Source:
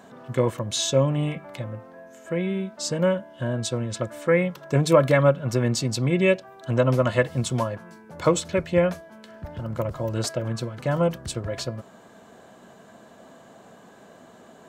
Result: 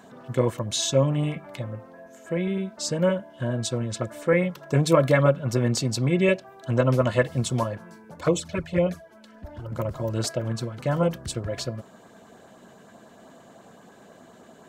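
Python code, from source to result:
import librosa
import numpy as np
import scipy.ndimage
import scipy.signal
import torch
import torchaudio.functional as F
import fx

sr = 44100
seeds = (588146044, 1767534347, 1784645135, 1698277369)

y = fx.filter_lfo_notch(x, sr, shape='saw_up', hz=9.7, low_hz=440.0, high_hz=3800.0, q=2.2)
y = fx.env_flanger(y, sr, rest_ms=4.9, full_db=-16.5, at=(8.14, 9.72))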